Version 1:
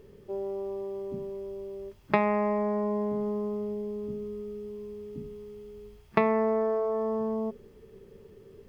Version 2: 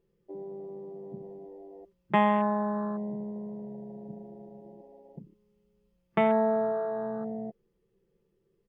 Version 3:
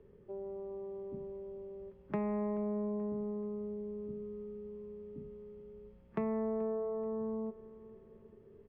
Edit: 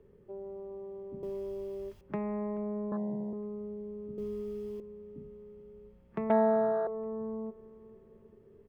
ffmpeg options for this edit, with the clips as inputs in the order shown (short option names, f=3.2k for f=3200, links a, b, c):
-filter_complex "[0:a]asplit=2[a][b];[1:a]asplit=2[c][d];[2:a]asplit=5[e][f][g][h][i];[e]atrim=end=1.232[j];[a]atrim=start=1.228:end=2.012[k];[f]atrim=start=2.008:end=2.922[l];[c]atrim=start=2.918:end=3.332[m];[g]atrim=start=3.328:end=4.182[n];[b]atrim=start=4.178:end=4.802[o];[h]atrim=start=4.798:end=6.302[p];[d]atrim=start=6.298:end=6.872[q];[i]atrim=start=6.868[r];[j][k]acrossfade=d=0.004:c1=hsin:c2=hsin[s];[s][l]acrossfade=d=0.004:c1=hsin:c2=hsin[t];[t][m]acrossfade=d=0.004:c1=hsin:c2=hsin[u];[u][n]acrossfade=d=0.004:c1=hsin:c2=hsin[v];[v][o]acrossfade=d=0.004:c1=hsin:c2=hsin[w];[w][p]acrossfade=d=0.004:c1=hsin:c2=hsin[x];[x][q]acrossfade=d=0.004:c1=hsin:c2=hsin[y];[y][r]acrossfade=d=0.004:c1=hsin:c2=hsin"